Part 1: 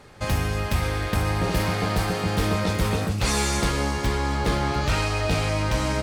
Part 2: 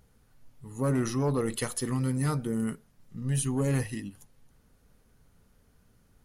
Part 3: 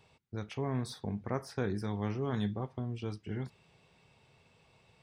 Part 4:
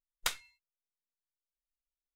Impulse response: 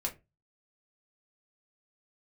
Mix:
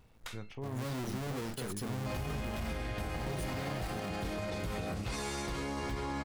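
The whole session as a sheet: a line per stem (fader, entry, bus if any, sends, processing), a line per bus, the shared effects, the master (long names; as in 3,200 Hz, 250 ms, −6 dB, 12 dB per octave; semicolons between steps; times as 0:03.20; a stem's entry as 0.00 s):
−12.0 dB, 1.85 s, bus A, send −4 dB, no processing
−5.5 dB, 0.00 s, no bus, no send, each half-wave held at its own peak; brickwall limiter −29.5 dBFS, peak gain reduction 11.5 dB
−5.0 dB, 0.00 s, bus A, no send, no processing
−1.0 dB, 0.00 s, bus A, no send, no processing
bus A: 0.0 dB, high-shelf EQ 4,400 Hz −8 dB; brickwall limiter −31.5 dBFS, peak gain reduction 11 dB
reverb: on, pre-delay 3 ms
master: brickwall limiter −28.5 dBFS, peak gain reduction 7.5 dB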